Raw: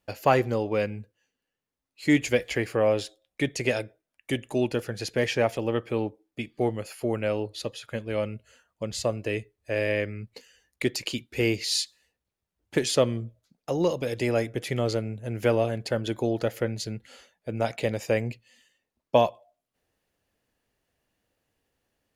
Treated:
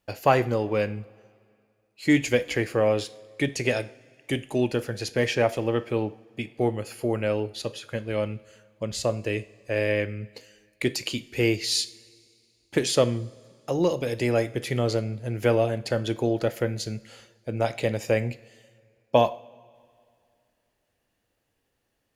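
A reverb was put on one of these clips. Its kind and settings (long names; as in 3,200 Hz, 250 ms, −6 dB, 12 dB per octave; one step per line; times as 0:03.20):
coupled-rooms reverb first 0.42 s, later 2.4 s, from −18 dB, DRR 12 dB
level +1 dB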